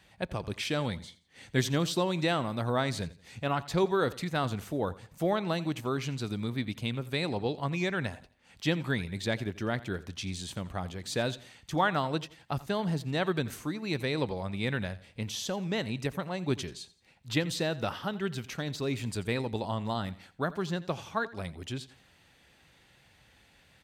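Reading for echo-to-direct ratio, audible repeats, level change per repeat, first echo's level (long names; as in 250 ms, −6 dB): −18.0 dB, 2, −9.5 dB, −18.5 dB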